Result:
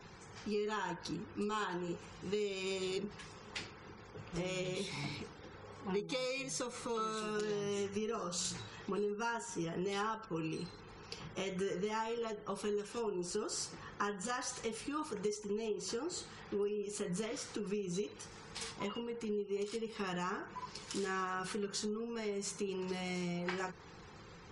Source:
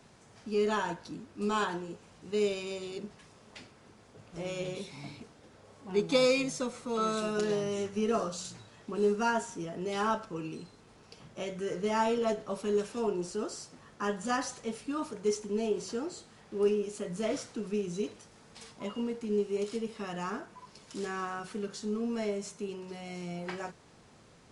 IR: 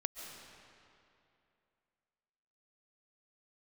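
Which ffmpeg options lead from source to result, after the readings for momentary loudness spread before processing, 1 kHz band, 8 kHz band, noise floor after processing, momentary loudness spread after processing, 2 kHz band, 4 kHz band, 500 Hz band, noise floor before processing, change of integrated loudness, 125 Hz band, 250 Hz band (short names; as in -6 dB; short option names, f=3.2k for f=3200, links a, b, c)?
16 LU, -6.0 dB, 0.0 dB, -54 dBFS, 9 LU, -3.5 dB, -2.0 dB, -7.0 dB, -58 dBFS, -6.0 dB, -2.0 dB, -6.0 dB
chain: -af "acompressor=threshold=-39dB:ratio=12,equalizer=f=125:t=o:w=0.33:g=-6,equalizer=f=250:t=o:w=0.33:g=-12,equalizer=f=630:t=o:w=0.33:g=-12,afftfilt=real='re*gte(hypot(re,im),0.000708)':imag='im*gte(hypot(re,im),0.000708)':win_size=1024:overlap=0.75,volume=7dB"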